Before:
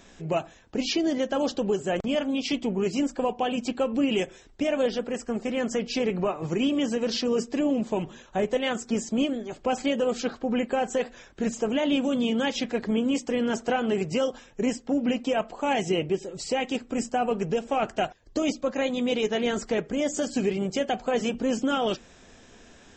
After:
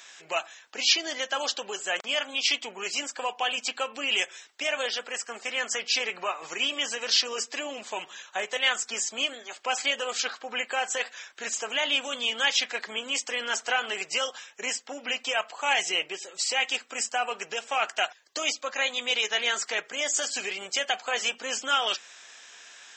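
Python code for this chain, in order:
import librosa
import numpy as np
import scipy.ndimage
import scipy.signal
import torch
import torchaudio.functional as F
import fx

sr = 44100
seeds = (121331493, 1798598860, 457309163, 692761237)

y = scipy.signal.sosfilt(scipy.signal.butter(2, 1400.0, 'highpass', fs=sr, output='sos'), x)
y = y * 10.0 ** (8.5 / 20.0)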